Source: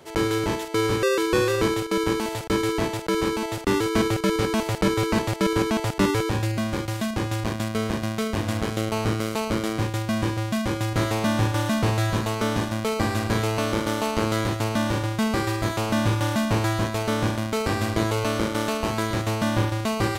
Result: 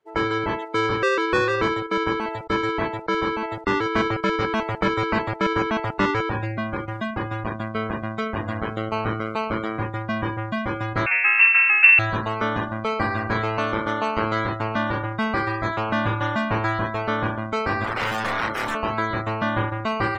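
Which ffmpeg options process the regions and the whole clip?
ffmpeg -i in.wav -filter_complex "[0:a]asettb=1/sr,asplit=3[link_01][link_02][link_03];[link_01]atrim=end=11.064[link_04];[link_02]atrim=start=11.06:end=11.99,asetpts=PTS-STARTPTS,afade=type=in:duration=0.004:curve=qsin,afade=type=out:start_time=0.926:duration=0.004:curve=qsin,asubboost=boost=10:cutoff=180,lowpass=frequency=2400:width_type=q:width=0.5098,lowpass=frequency=2400:width_type=q:width=0.6013,lowpass=frequency=2400:width_type=q:width=0.9,lowpass=frequency=2400:width_type=q:width=2.563,afreqshift=-2800[link_05];[link_03]atrim=start=11.986[link_06];[link_04][link_05]acrossfade=duration=0.004:curve1=hsin:curve2=qsin[link_07];[link_07][link_06]acrossfade=duration=0.004:curve1=qsin:curve2=hsin,asettb=1/sr,asplit=3[link_08][link_09][link_10];[link_08]atrim=end=17.844[link_11];[link_09]atrim=start=17.84:end=18.75,asetpts=PTS-STARTPTS,afade=type=in:duration=0.004:curve=qsin,afade=type=out:start_time=0.906:duration=0.004:curve=qsin,highpass=68,aeval=exprs='(mod(10*val(0)+1,2)-1)/10':channel_layout=same,asplit=2[link_12][link_13];[link_13]adelay=35,volume=-8dB[link_14];[link_12][link_14]amix=inputs=2:normalize=0,atrim=end_sample=40131[link_15];[link_10]atrim=start=18.746[link_16];[link_11][link_15]acrossfade=duration=0.004:curve1=hsin:curve2=qsin[link_17];[link_17][link_16]acrossfade=duration=0.004:curve1=qsin:curve2=hsin,afftdn=noise_reduction=30:noise_floor=-32,equalizer=frequency=1500:width_type=o:width=2.1:gain=10.5,volume=-3.5dB" out.wav

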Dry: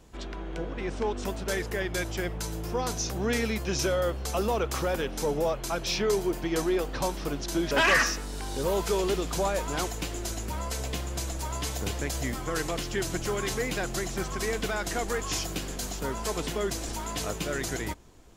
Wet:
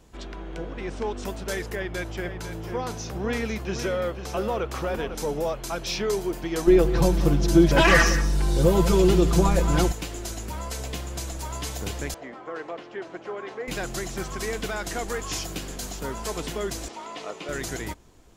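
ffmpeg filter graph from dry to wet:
ffmpeg -i in.wav -filter_complex "[0:a]asettb=1/sr,asplit=3[link_01][link_02][link_03];[link_01]atrim=end=1.754[link_04];[link_02]atrim=start=1.75:end=5.15,asetpts=PTS-STARTPTS,afade=type=in:duration=0.004:curve=qsin,afade=type=out:start_time=3.396:duration=0.004:curve=qsin,bass=frequency=250:gain=0,treble=frequency=4000:gain=-8,aecho=1:1:499:0.335,atrim=end_sample=149940[link_05];[link_03]atrim=start=5.146[link_06];[link_04][link_05]acrossfade=duration=0.004:curve1=hsin:curve2=qsin[link_07];[link_07][link_06]acrossfade=duration=0.004:curve1=qsin:curve2=hsin,asettb=1/sr,asplit=3[link_08][link_09][link_10];[link_08]atrim=end=6.674[link_11];[link_09]atrim=start=6.67:end=9.92,asetpts=PTS-STARTPTS,afade=type=in:duration=0.004:curve=qsin,afade=type=out:start_time=3.246:duration=0.004:curve=qsin,lowshelf=frequency=390:gain=12,aecho=1:1:5.9:0.87,atrim=end_sample=143325,aecho=1:1:183:0.211,atrim=end_sample=143325[link_12];[link_10]atrim=start=9.916[link_13];[link_11][link_12]acrossfade=duration=0.004:curve1=hsin:curve2=qsin[link_14];[link_14][link_13]acrossfade=duration=0.004:curve1=qsin:curve2=hsin,asettb=1/sr,asplit=3[link_15][link_16][link_17];[link_15]atrim=end=12.144[link_18];[link_16]atrim=start=12.14:end=13.68,asetpts=PTS-STARTPTS,afade=type=in:duration=0.004:curve=qsin,afade=type=out:start_time=1.536:duration=0.004:curve=qsin,highpass=580,lowpass=2400,tiltshelf=frequency=760:gain=7[link_19];[link_17]atrim=start=13.676[link_20];[link_18][link_19]acrossfade=duration=0.004:curve1=hsin:curve2=qsin[link_21];[link_21][link_20]acrossfade=duration=0.004:curve1=qsin:curve2=hsin,asettb=1/sr,asplit=3[link_22][link_23][link_24];[link_22]atrim=end=16.884[link_25];[link_23]atrim=start=16.88:end=17.49,asetpts=PTS-STARTPTS,afade=type=in:duration=0.004:curve=qsin,afade=type=out:start_time=0.606:duration=0.004:curve=qsin,acrossover=split=3300[link_26][link_27];[link_27]acompressor=threshold=-46dB:ratio=4:attack=1:release=60[link_28];[link_26][link_28]amix=inputs=2:normalize=0,highpass=350,lowpass=6500,bandreject=frequency=1600:width=6.7[link_29];[link_24]atrim=start=17.486[link_30];[link_25][link_29]acrossfade=duration=0.004:curve1=hsin:curve2=qsin[link_31];[link_31][link_30]acrossfade=duration=0.004:curve1=qsin:curve2=hsin" out.wav

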